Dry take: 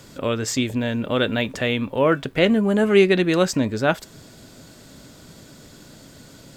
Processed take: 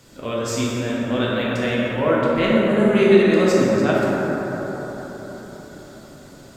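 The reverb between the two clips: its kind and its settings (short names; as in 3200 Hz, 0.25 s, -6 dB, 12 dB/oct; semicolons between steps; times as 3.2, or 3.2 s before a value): plate-style reverb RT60 4.7 s, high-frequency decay 0.3×, DRR -7 dB; gain -6.5 dB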